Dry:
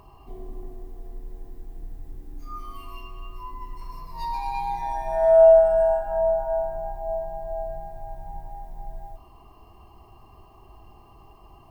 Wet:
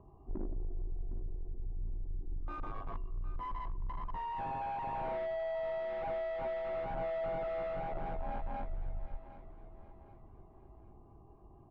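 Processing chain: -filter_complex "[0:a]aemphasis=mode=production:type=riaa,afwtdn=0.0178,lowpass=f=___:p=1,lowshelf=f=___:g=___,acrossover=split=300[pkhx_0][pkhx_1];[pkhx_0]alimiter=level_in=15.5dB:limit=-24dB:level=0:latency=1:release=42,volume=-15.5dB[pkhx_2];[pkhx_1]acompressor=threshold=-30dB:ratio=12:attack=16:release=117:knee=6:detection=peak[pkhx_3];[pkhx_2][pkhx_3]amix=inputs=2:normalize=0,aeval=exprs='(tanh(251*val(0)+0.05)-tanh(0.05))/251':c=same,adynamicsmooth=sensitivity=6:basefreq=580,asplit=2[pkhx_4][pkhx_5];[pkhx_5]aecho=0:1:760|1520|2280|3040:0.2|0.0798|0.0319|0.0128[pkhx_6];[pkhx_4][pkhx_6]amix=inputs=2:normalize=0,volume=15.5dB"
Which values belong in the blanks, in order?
1200, 270, 11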